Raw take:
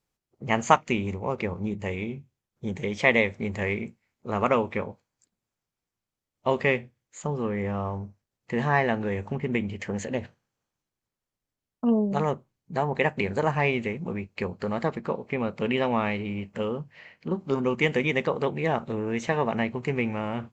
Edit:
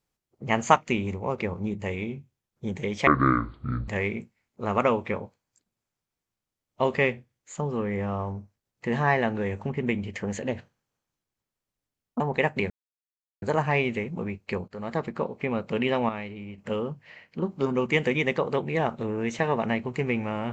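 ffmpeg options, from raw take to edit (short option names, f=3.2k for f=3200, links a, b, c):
-filter_complex "[0:a]asplit=8[a][b][c][d][e][f][g][h];[a]atrim=end=3.074[i];[b]atrim=start=3.07:end=3.54,asetpts=PTS-STARTPTS,asetrate=25578,aresample=44100,atrim=end_sample=35736,asetpts=PTS-STARTPTS[j];[c]atrim=start=3.536:end=11.862[k];[d]atrim=start=12.808:end=13.31,asetpts=PTS-STARTPTS,afade=t=out:st=0.498:d=0.004:c=hsin,apad=pad_dur=0.72[l];[e]atrim=start=13.31:end=14.57,asetpts=PTS-STARTPTS,afade=t=in:d=0.004:c=hsin,afade=t=out:st=1.256:d=0.004:c=hsin:silence=0.188365[m];[f]atrim=start=14.57:end=15.982,asetpts=PTS-STARTPTS,afade=t=in:d=0.37:silence=0.188365[n];[g]atrim=start=15.978:end=16.472,asetpts=PTS-STARTPTS,volume=-7.5dB[o];[h]atrim=start=16.468[p];[i][j]acrossfade=d=0.004:c1=hsin:c2=hsin[q];[q][k]acrossfade=d=0.004:c1=hsin:c2=hsin[r];[l][m][n]concat=n=3:v=0:a=1[s];[r][s]acrossfade=d=0.004:c1=hsin:c2=hsin[t];[t][o]acrossfade=d=0.004:c1=hsin:c2=hsin[u];[u][p]acrossfade=d=0.004:c1=hsin:c2=hsin"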